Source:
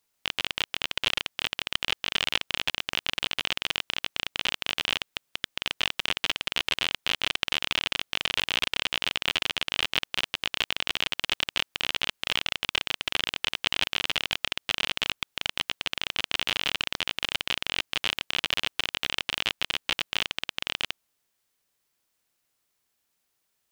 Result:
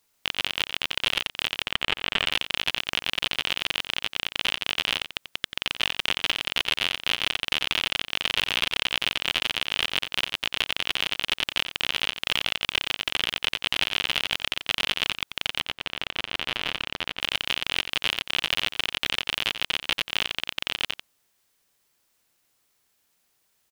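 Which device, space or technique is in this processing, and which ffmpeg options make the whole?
soft clipper into limiter: -filter_complex "[0:a]asettb=1/sr,asplit=3[link_01][link_02][link_03];[link_01]atrim=end=1.664[link_04];[link_02]atrim=start=1.66:end=2.26,asetpts=PTS-STARTPTS,afade=type=in:duration=0.004:curve=qsin,afade=type=out:start_time=0.596:duration=0.004:curve=qsin,acrossover=split=3400[link_05][link_06];[link_06]acompressor=threshold=-41dB:ratio=4:attack=1:release=60[link_07];[link_05][link_07]amix=inputs=2:normalize=0[link_08];[link_03]atrim=start=2.256[link_09];[link_04][link_08]acrossfade=duration=0.004:curve1=hsin:curve2=qsin[link_10];[link_10][link_09]acrossfade=duration=0.004:curve1=qsin:curve2=hsin,asoftclip=type=tanh:threshold=-7.5dB,alimiter=limit=-13.5dB:level=0:latency=1,asettb=1/sr,asplit=3[link_11][link_12][link_13];[link_11]atrim=end=15.604[link_14];[link_12]atrim=start=15.6:end=17.21,asetpts=PTS-STARTPTS,afade=type=in:duration=0.004:curve=qsin,afade=type=out:start_time=1.606:duration=0.004:curve=qsin,highshelf=frequency=3600:gain=-10.5[link_15];[link_13]atrim=start=17.206[link_16];[link_14][link_15]acrossfade=duration=0.004:curve1=hsin:curve2=qsin[link_17];[link_17][link_16]acrossfade=duration=0.004:curve1=qsin:curve2=hsin,aecho=1:1:89:0.299,volume=6dB"

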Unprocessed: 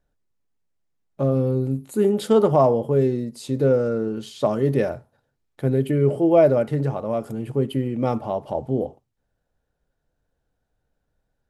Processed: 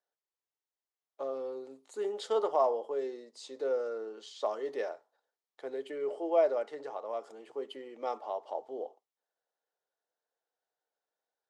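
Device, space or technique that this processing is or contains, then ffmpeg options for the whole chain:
phone speaker on a table: -af "highpass=frequency=470:width=0.5412,highpass=frequency=470:width=1.3066,equalizer=frequency=570:width_type=q:width=4:gain=-5,equalizer=frequency=1500:width_type=q:width=4:gain=-4,equalizer=frequency=2500:width_type=q:width=4:gain=-6,lowpass=frequency=7200:width=0.5412,lowpass=frequency=7200:width=1.3066,volume=-7dB"

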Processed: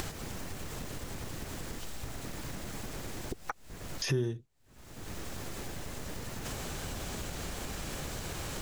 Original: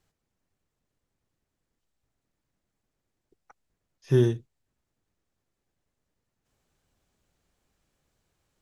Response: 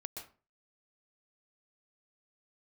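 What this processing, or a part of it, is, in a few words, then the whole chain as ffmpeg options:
upward and downward compression: -af "acompressor=mode=upward:threshold=-33dB:ratio=2.5,acompressor=threshold=-51dB:ratio=4,volume=16.5dB"

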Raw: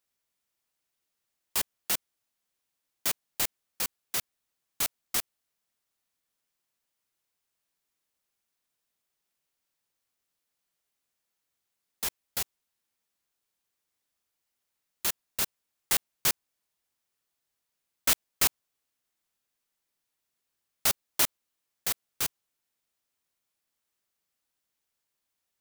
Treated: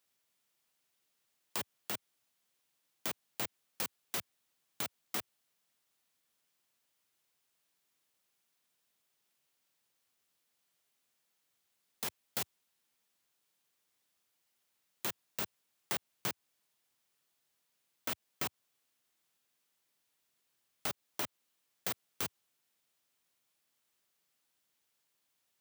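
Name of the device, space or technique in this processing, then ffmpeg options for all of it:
broadcast voice chain: -af "highpass=frequency=92:width=0.5412,highpass=frequency=92:width=1.3066,deesser=0.45,acompressor=threshold=-34dB:ratio=4,equalizer=frequency=3200:width_type=o:width=0.77:gain=2,alimiter=level_in=0.5dB:limit=-24dB:level=0:latency=1:release=136,volume=-0.5dB,volume=3dB"

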